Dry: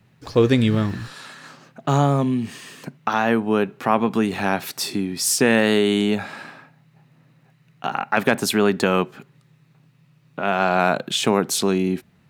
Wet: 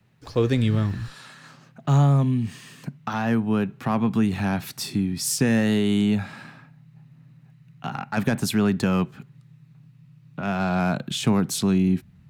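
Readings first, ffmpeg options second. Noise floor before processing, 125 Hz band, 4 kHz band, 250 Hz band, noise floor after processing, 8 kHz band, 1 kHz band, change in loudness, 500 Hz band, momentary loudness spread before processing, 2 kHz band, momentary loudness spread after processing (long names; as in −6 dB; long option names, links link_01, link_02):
−58 dBFS, +3.0 dB, −6.0 dB, −0.5 dB, −54 dBFS, −5.0 dB, −7.5 dB, −3.0 dB, −8.0 dB, 15 LU, −7.5 dB, 13 LU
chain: -filter_complex "[0:a]asubboost=boost=7.5:cutoff=160,acrossover=split=290|900|4500[link_01][link_02][link_03][link_04];[link_03]asoftclip=type=tanh:threshold=-19.5dB[link_05];[link_01][link_02][link_05][link_04]amix=inputs=4:normalize=0,volume=-5dB"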